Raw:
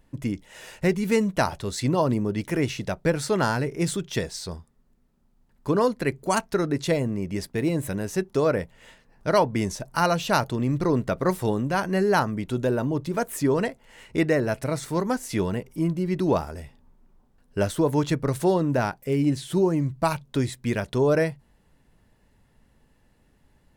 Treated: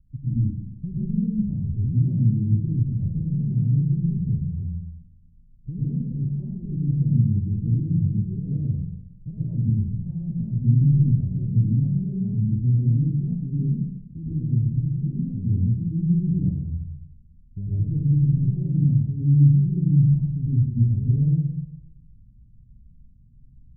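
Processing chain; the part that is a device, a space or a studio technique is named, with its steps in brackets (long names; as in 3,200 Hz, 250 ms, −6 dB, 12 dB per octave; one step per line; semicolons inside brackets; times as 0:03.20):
club heard from the street (brickwall limiter −17.5 dBFS, peak gain reduction 10 dB; low-pass filter 160 Hz 24 dB per octave; convolution reverb RT60 0.85 s, pre-delay 93 ms, DRR −8.5 dB)
0:13.50–0:15.27: flat-topped bell 1,200 Hz −11 dB 2.6 octaves
level +3 dB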